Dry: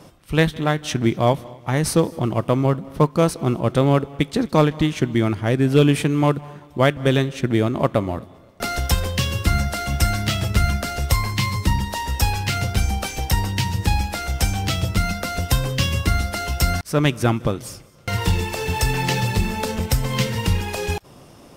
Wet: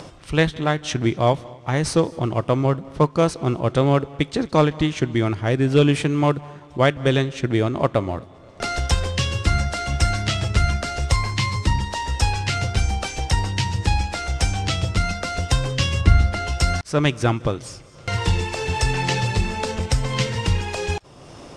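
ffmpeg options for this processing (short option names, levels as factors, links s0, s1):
-filter_complex "[0:a]asettb=1/sr,asplit=3[s0][s1][s2];[s0]atrim=end=16.014[s3];[s1]atrim=start=16.01:end=16.47,asetpts=PTS-STARTPTS,afade=t=in:d=0.004:c=qsin,afade=t=out:st=0.456:d=0.004:c=qsin,bass=f=250:g=7,treble=f=4000:g=-7[s4];[s2]atrim=start=16.466[s5];[s3][s4]acrossfade=d=0.004:c1=hsin:c2=qsin[s6];[s6][s5]acrossfade=d=0.004:c1=qsin:c2=hsin,lowpass=f=8400:w=0.5412,lowpass=f=8400:w=1.3066,equalizer=f=210:t=o:w=0.59:g=-5,acompressor=mode=upward:threshold=0.0251:ratio=2.5"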